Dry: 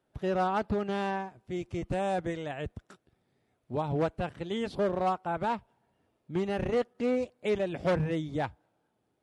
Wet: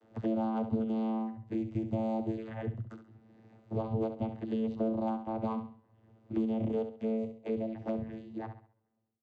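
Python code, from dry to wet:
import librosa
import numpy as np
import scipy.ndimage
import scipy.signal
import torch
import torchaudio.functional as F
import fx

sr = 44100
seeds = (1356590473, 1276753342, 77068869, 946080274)

y = fx.fade_out_tail(x, sr, length_s=2.75)
y = fx.env_flanger(y, sr, rest_ms=11.8, full_db=-29.5)
y = fx.vocoder(y, sr, bands=16, carrier='saw', carrier_hz=111.0)
y = fx.room_flutter(y, sr, wall_m=11.5, rt60_s=0.39)
y = fx.band_squash(y, sr, depth_pct=70)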